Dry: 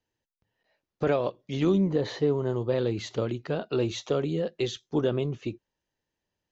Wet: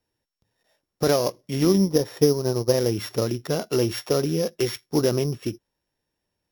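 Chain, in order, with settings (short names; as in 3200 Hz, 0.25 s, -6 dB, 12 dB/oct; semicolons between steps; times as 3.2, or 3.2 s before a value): sample sorter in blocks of 8 samples; 1.68–2.89 transient shaper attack +4 dB, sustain -9 dB; gain +4.5 dB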